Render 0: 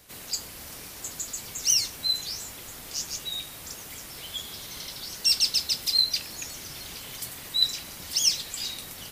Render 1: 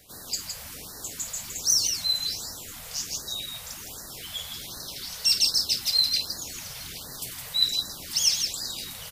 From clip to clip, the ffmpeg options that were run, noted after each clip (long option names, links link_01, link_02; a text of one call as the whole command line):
ffmpeg -i in.wav -filter_complex "[0:a]asplit=2[link_01][link_02];[link_02]aecho=0:1:52.48|163.3:0.251|0.501[link_03];[link_01][link_03]amix=inputs=2:normalize=0,afftfilt=real='re*(1-between(b*sr/1024,280*pow(2800/280,0.5+0.5*sin(2*PI*1.3*pts/sr))/1.41,280*pow(2800/280,0.5+0.5*sin(2*PI*1.3*pts/sr))*1.41))':imag='im*(1-between(b*sr/1024,280*pow(2800/280,0.5+0.5*sin(2*PI*1.3*pts/sr))/1.41,280*pow(2800/280,0.5+0.5*sin(2*PI*1.3*pts/sr))*1.41))':win_size=1024:overlap=0.75" out.wav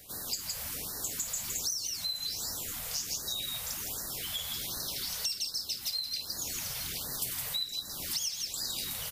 ffmpeg -i in.wav -af "acompressor=threshold=-32dB:ratio=16,highshelf=frequency=11000:gain=7.5" out.wav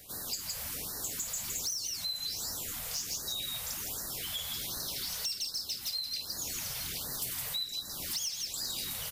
ffmpeg -i in.wav -af "asoftclip=type=tanh:threshold=-26.5dB" out.wav